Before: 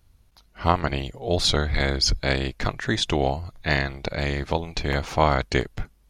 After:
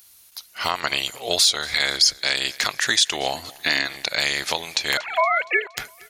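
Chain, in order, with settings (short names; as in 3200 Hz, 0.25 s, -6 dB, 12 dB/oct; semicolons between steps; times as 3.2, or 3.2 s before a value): 4.97–5.77 sine-wave speech; differentiator; compressor 2.5:1, threshold -41 dBFS, peak gain reduction 13.5 dB; 3.34–3.87 bell 270 Hz +13.5 dB 0.6 oct; feedback echo 0.234 s, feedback 53%, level -23 dB; maximiser +27 dB; gain -4.5 dB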